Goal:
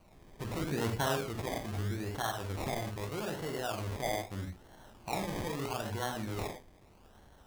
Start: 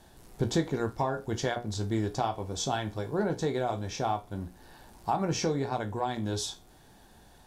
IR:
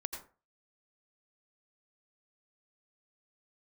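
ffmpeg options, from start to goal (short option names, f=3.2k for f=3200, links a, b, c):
-filter_complex "[0:a]acrossover=split=800[a][b];[a]alimiter=level_in=4.5dB:limit=-24dB:level=0:latency=1:release=32,volume=-4.5dB[c];[c][b]amix=inputs=2:normalize=0,asettb=1/sr,asplit=3[d][e][f];[d]atrim=end=0.604[g];[e]atrim=start=0.6:end=1.24,asetpts=PTS-STARTPTS,afade=t=in:d=0.004:c=qsin,afade=t=out:st=0.636:d=0.004:c=qsin,equalizer=f=200:w=0.32:g=7[h];[f]atrim=start=1.236[i];[g][h]acrossfade=d=0.004:c1=hsin:c2=qsin[j];[j][i]acrossfade=d=0.004:c1=qsin:c2=hsin[k];[1:a]atrim=start_sample=2205,asetrate=74970,aresample=44100[l];[k][l]afir=irnorm=-1:irlink=0,acrusher=samples=25:mix=1:aa=0.000001:lfo=1:lforange=15:lforate=0.79,volume=2dB"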